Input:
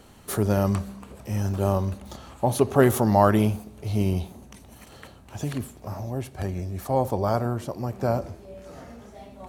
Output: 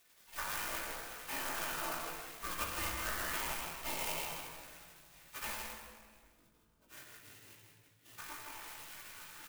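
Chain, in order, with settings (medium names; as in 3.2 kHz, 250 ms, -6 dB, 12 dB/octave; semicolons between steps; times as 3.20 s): 5.56–8.19 s: Bessel high-pass 2.8 kHz, order 2; spectral gate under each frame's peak -30 dB weak; compression 6:1, threshold -48 dBFS, peak gain reduction 12.5 dB; distance through air 93 m; doubling 18 ms -2 dB; delay 159 ms -5 dB; simulated room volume 3400 m³, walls mixed, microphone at 2.6 m; sampling jitter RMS 0.064 ms; trim +9.5 dB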